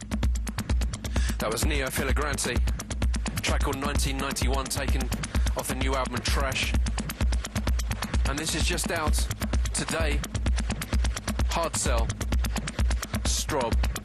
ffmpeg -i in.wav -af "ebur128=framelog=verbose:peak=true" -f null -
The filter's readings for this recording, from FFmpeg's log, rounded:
Integrated loudness:
  I:         -27.9 LUFS
  Threshold: -37.9 LUFS
Loudness range:
  LRA:         0.7 LU
  Threshold: -47.8 LUFS
  LRA low:   -28.2 LUFS
  LRA high:  -27.5 LUFS
True peak:
  Peak:      -14.3 dBFS